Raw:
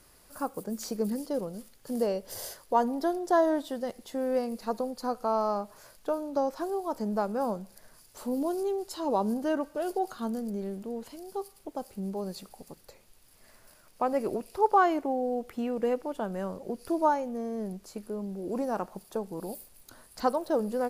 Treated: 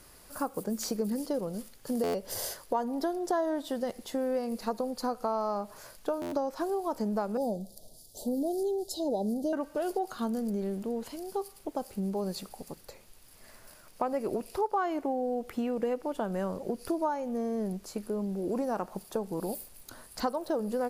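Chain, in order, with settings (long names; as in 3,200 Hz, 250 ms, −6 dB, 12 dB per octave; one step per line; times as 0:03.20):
0:07.37–0:09.53: elliptic band-stop filter 720–3,600 Hz, stop band 40 dB
downward compressor 4 to 1, threshold −32 dBFS, peak gain reduction 12.5 dB
buffer that repeats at 0:02.03/0:06.21, samples 512, times 9
level +4 dB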